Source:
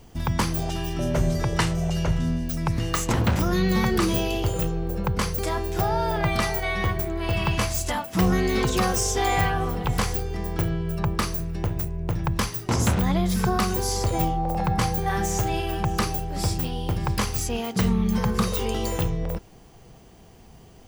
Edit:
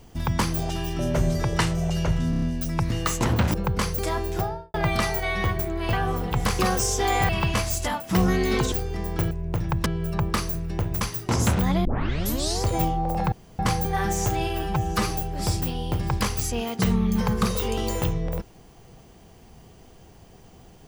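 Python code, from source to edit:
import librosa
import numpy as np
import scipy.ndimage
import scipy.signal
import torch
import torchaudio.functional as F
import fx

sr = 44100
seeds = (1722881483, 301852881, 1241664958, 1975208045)

y = fx.studio_fade_out(x, sr, start_s=5.68, length_s=0.46)
y = fx.edit(y, sr, fx.stutter(start_s=2.3, slice_s=0.03, count=5),
    fx.cut(start_s=3.42, length_s=1.52),
    fx.swap(start_s=7.33, length_s=1.43, other_s=9.46, other_length_s=0.66),
    fx.move(start_s=11.86, length_s=0.55, to_s=10.71),
    fx.tape_start(start_s=13.25, length_s=0.77),
    fx.insert_room_tone(at_s=14.72, length_s=0.27),
    fx.stretch_span(start_s=15.76, length_s=0.32, factor=1.5), tone=tone)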